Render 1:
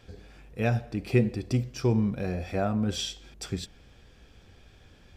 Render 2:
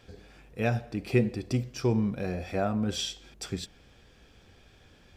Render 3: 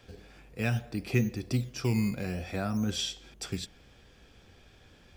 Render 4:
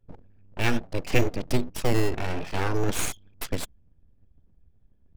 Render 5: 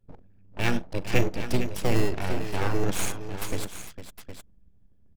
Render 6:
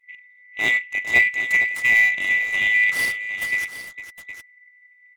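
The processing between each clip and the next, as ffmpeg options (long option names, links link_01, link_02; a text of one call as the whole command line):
ffmpeg -i in.wav -af "lowshelf=frequency=120:gain=-5.5" out.wav
ffmpeg -i in.wav -filter_complex "[0:a]acrossover=split=310|950[link_01][link_02][link_03];[link_01]acrusher=samples=13:mix=1:aa=0.000001:lfo=1:lforange=13:lforate=0.6[link_04];[link_02]acompressor=threshold=-41dB:ratio=6[link_05];[link_04][link_05][link_03]amix=inputs=3:normalize=0" out.wav
ffmpeg -i in.wav -af "anlmdn=0.158,aeval=exprs='abs(val(0))':channel_layout=same,volume=8dB" out.wav
ffmpeg -i in.wav -af "tremolo=f=190:d=0.333,aecho=1:1:42|455|763:0.112|0.282|0.282" out.wav
ffmpeg -i in.wav -af "afftfilt=real='real(if(lt(b,920),b+92*(1-2*mod(floor(b/92),2)),b),0)':imag='imag(if(lt(b,920),b+92*(1-2*mod(floor(b/92),2)),b),0)':win_size=2048:overlap=0.75" out.wav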